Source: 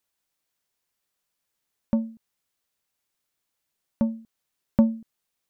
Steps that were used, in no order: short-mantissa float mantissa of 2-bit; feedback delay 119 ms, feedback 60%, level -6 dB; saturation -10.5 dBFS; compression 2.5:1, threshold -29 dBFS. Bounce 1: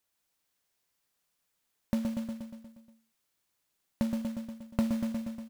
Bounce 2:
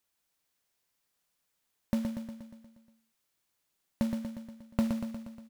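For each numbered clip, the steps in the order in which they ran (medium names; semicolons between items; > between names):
saturation > feedback delay > compression > short-mantissa float; saturation > compression > short-mantissa float > feedback delay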